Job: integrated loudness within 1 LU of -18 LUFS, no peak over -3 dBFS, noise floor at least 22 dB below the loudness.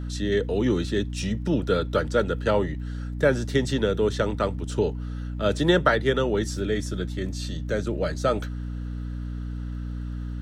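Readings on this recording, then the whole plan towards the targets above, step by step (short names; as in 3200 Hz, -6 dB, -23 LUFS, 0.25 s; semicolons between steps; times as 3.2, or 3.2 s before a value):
ticks 43/s; hum 60 Hz; harmonics up to 300 Hz; hum level -29 dBFS; loudness -26.0 LUFS; peak -7.5 dBFS; loudness target -18.0 LUFS
-> de-click; de-hum 60 Hz, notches 5; gain +8 dB; limiter -3 dBFS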